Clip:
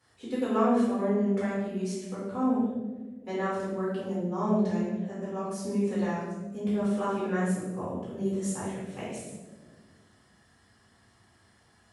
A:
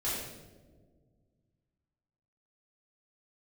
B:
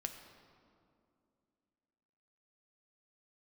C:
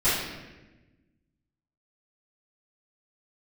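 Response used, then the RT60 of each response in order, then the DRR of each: A; not exponential, 2.5 s, 1.1 s; -10.0, 5.0, -15.5 dB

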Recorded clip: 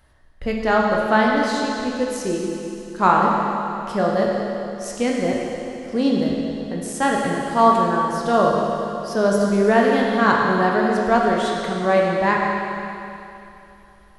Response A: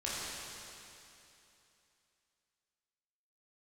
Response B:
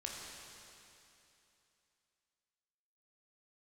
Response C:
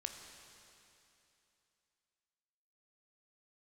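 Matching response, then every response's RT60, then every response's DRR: B; 2.9, 2.9, 2.9 s; -8.5, -2.5, 4.0 dB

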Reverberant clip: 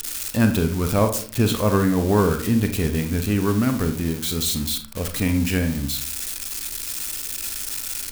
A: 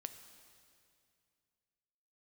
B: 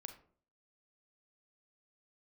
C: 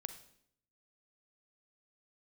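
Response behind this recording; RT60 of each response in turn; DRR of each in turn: B; 2.4, 0.50, 0.70 s; 8.5, 6.5, 9.0 dB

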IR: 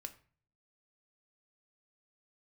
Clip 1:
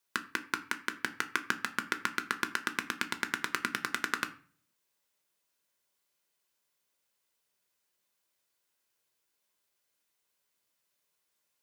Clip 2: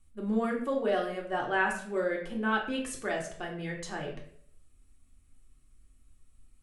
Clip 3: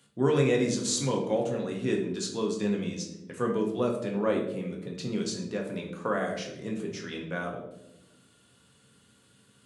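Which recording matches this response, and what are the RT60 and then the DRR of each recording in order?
1; 0.45, 0.60, 0.95 s; 7.5, -1.0, 0.0 dB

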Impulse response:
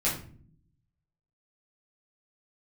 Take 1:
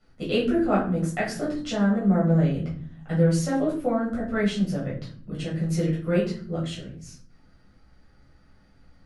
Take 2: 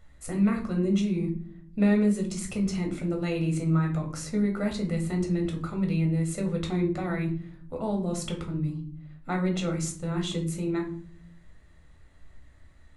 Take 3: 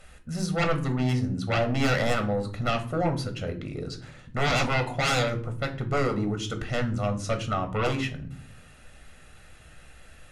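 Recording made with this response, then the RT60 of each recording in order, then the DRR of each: 1; 0.50 s, 0.50 s, not exponential; -7.5, 1.0, 5.5 dB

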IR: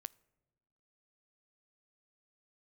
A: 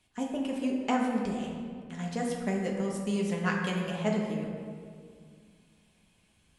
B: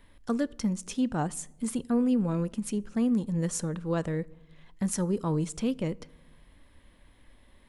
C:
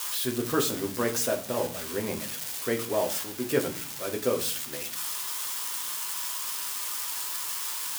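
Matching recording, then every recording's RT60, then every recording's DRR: B; 2.1, 1.2, 0.45 s; -2.0, 21.0, 2.5 dB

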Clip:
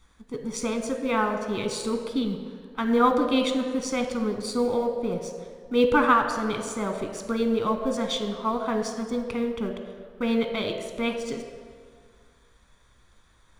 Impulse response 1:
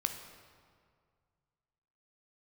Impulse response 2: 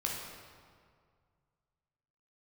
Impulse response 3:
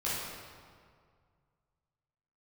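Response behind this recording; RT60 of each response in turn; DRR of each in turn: 1; 2.0, 2.0, 2.0 s; 5.0, -3.0, -10.0 dB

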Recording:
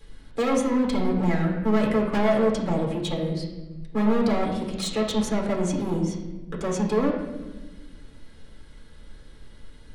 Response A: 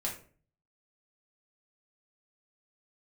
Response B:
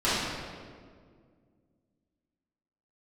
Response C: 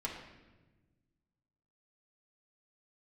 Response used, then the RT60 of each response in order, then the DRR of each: C; 0.45, 1.9, 1.2 s; -3.0, -13.5, -3.5 dB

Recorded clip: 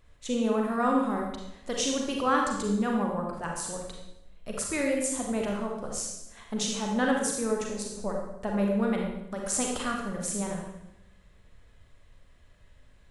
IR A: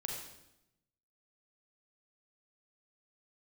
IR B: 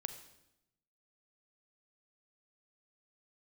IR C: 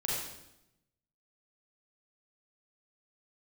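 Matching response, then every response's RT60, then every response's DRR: A; 0.85, 0.85, 0.85 s; -0.5, 8.5, -5.5 dB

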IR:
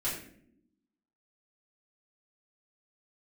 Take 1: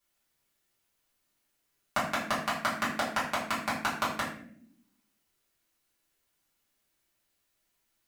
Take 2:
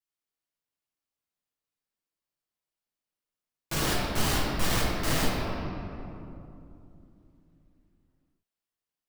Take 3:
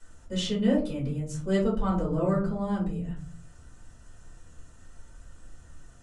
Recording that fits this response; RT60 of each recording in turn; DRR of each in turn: 1; not exponential, 2.8 s, 0.45 s; -10.5, -7.0, -7.5 dB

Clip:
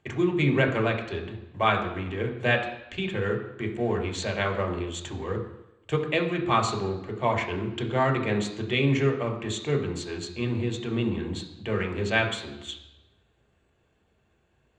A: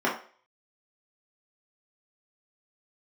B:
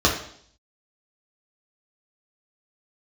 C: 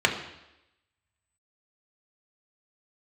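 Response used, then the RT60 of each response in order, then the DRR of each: C; 0.45, 0.60, 0.90 s; -6.5, -3.0, 1.0 dB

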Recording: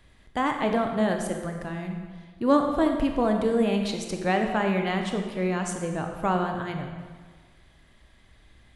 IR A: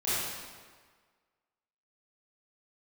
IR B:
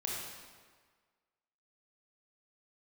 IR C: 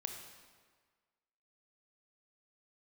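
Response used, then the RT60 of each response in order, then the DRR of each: C; 1.6, 1.6, 1.6 s; -13.0, -4.0, 3.5 dB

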